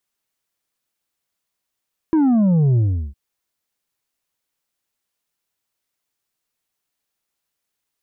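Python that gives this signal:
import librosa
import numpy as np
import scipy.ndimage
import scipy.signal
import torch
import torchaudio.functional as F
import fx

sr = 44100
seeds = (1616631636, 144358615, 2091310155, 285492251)

y = fx.sub_drop(sr, level_db=-13, start_hz=330.0, length_s=1.01, drive_db=5.0, fade_s=0.37, end_hz=65.0)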